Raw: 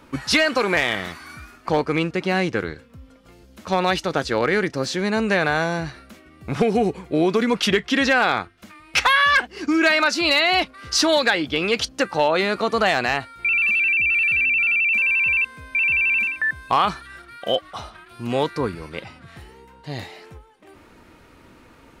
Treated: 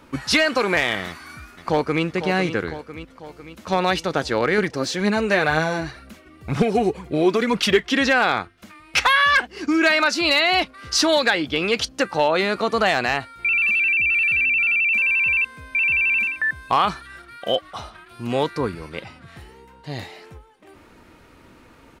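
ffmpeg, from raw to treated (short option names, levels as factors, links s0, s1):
-filter_complex "[0:a]asplit=2[s0][s1];[s1]afade=t=in:st=1.07:d=0.01,afade=t=out:st=2.04:d=0.01,aecho=0:1:500|1000|1500|2000|2500|3000|3500:0.316228|0.189737|0.113842|0.0683052|0.0409831|0.0245899|0.0147539[s2];[s0][s2]amix=inputs=2:normalize=0,asettb=1/sr,asplit=3[s3][s4][s5];[s3]atrim=end=4.584[s6];[s4]atrim=start=4.58:end=7.93,asetpts=PTS-STARTPTS,afade=t=in:d=0.004:c=qsin,afade=t=out:st=3.346:d=0.004:c=qsin,aphaser=in_gain=1:out_gain=1:delay=3.5:decay=0.43:speed=2:type=triangular[s7];[s5]atrim=start=7.926[s8];[s6][s7]acrossfade=d=0.004:c1=hsin:c2=qsin[s9];[s9][s8]acrossfade=d=0.004:c1=qsin:c2=hsin"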